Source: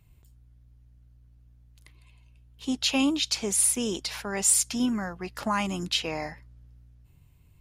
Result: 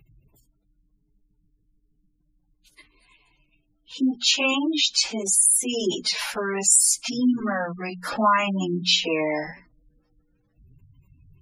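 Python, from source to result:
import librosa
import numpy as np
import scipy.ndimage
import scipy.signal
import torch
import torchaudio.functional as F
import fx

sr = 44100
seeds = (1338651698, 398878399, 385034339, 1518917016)

p1 = fx.hum_notches(x, sr, base_hz=60, count=4)
p2 = fx.stretch_vocoder_free(p1, sr, factor=1.5)
p3 = fx.peak_eq(p2, sr, hz=69.0, db=-9.0, octaves=1.3)
p4 = fx.rider(p3, sr, range_db=4, speed_s=0.5)
p5 = p3 + (p4 * 10.0 ** (2.5 / 20.0))
p6 = fx.spec_gate(p5, sr, threshold_db=-20, keep='strong')
y = p6 * 10.0 ** (1.5 / 20.0)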